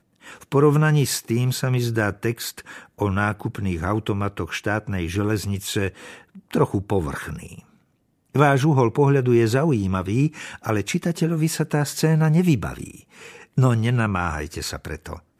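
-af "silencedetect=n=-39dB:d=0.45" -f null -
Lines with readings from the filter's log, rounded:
silence_start: 7.60
silence_end: 8.35 | silence_duration: 0.75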